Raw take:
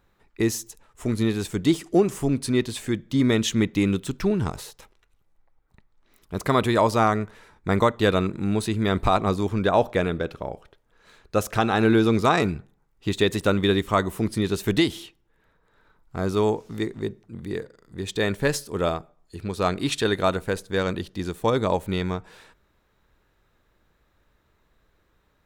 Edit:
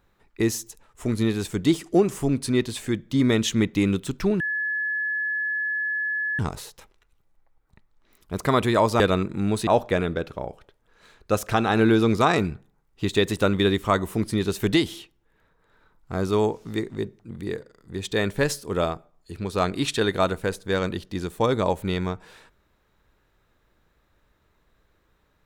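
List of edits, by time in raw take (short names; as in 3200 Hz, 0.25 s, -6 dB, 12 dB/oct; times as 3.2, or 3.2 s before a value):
4.4 add tone 1710 Hz -23.5 dBFS 1.99 s
7.01–8.04 cut
8.71–9.71 cut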